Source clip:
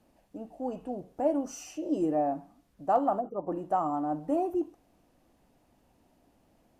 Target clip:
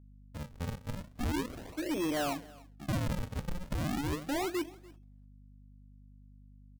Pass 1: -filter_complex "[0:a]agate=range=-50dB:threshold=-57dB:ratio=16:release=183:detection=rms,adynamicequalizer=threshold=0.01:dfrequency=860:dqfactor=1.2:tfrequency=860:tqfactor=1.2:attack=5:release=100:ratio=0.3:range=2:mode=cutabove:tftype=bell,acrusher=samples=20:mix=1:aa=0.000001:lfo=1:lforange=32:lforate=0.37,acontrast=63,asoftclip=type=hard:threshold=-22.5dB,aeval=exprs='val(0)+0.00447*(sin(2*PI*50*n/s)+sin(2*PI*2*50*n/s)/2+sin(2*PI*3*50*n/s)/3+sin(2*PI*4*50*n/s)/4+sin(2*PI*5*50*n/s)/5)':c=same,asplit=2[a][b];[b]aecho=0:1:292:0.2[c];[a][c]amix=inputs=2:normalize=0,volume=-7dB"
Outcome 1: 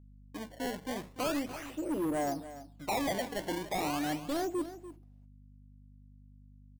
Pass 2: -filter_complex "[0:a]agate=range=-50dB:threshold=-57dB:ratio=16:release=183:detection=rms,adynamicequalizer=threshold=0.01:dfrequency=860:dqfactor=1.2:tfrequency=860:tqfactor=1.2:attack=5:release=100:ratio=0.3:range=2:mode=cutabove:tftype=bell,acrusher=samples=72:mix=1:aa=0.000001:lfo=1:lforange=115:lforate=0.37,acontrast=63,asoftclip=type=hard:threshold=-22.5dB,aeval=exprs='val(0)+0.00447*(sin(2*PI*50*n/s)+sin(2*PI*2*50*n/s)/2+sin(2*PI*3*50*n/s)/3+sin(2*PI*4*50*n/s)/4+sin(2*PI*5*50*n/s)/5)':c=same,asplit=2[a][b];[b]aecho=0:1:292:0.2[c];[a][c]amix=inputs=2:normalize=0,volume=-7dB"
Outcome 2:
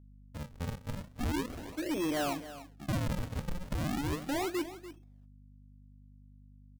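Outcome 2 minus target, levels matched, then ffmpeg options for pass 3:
echo-to-direct +8.5 dB
-filter_complex "[0:a]agate=range=-50dB:threshold=-57dB:ratio=16:release=183:detection=rms,adynamicequalizer=threshold=0.01:dfrequency=860:dqfactor=1.2:tfrequency=860:tqfactor=1.2:attack=5:release=100:ratio=0.3:range=2:mode=cutabove:tftype=bell,acrusher=samples=72:mix=1:aa=0.000001:lfo=1:lforange=115:lforate=0.37,acontrast=63,asoftclip=type=hard:threshold=-22.5dB,aeval=exprs='val(0)+0.00447*(sin(2*PI*50*n/s)+sin(2*PI*2*50*n/s)/2+sin(2*PI*3*50*n/s)/3+sin(2*PI*4*50*n/s)/4+sin(2*PI*5*50*n/s)/5)':c=same,asplit=2[a][b];[b]aecho=0:1:292:0.075[c];[a][c]amix=inputs=2:normalize=0,volume=-7dB"

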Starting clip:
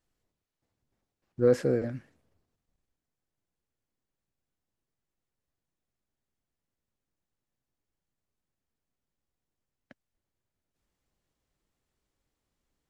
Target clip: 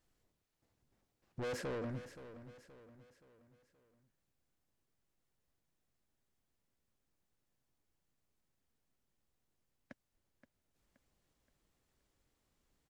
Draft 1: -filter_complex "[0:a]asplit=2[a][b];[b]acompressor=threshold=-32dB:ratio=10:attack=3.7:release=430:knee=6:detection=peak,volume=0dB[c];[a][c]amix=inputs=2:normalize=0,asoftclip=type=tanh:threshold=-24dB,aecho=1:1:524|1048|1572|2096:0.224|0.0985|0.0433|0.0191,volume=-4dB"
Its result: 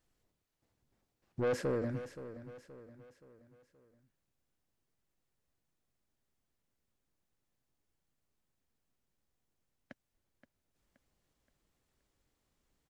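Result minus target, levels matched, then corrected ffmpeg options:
soft clip: distortion -5 dB
-filter_complex "[0:a]asplit=2[a][b];[b]acompressor=threshold=-32dB:ratio=10:attack=3.7:release=430:knee=6:detection=peak,volume=0dB[c];[a][c]amix=inputs=2:normalize=0,asoftclip=type=tanh:threshold=-33.5dB,aecho=1:1:524|1048|1572|2096:0.224|0.0985|0.0433|0.0191,volume=-4dB"

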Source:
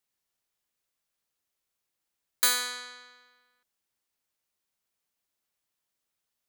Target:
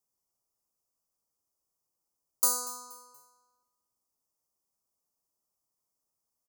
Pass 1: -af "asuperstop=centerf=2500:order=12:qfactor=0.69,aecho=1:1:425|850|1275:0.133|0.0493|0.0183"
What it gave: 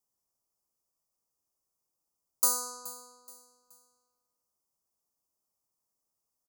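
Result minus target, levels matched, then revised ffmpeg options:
echo 0.187 s late
-af "asuperstop=centerf=2500:order=12:qfactor=0.69,aecho=1:1:238|476|714:0.133|0.0493|0.0183"

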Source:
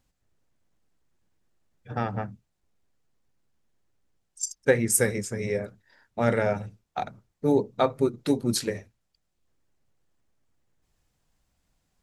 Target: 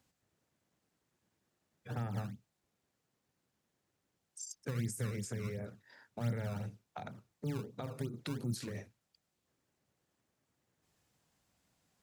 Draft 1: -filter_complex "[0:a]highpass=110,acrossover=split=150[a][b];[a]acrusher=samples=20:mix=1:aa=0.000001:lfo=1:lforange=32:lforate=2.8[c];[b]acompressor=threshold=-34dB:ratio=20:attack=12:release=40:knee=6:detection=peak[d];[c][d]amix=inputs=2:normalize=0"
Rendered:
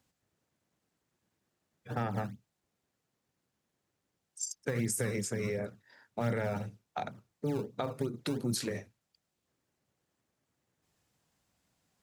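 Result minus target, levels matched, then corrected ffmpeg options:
compressor: peak gain reduction -10.5 dB
-filter_complex "[0:a]highpass=110,acrossover=split=150[a][b];[a]acrusher=samples=20:mix=1:aa=0.000001:lfo=1:lforange=32:lforate=2.8[c];[b]acompressor=threshold=-45dB:ratio=20:attack=12:release=40:knee=6:detection=peak[d];[c][d]amix=inputs=2:normalize=0"

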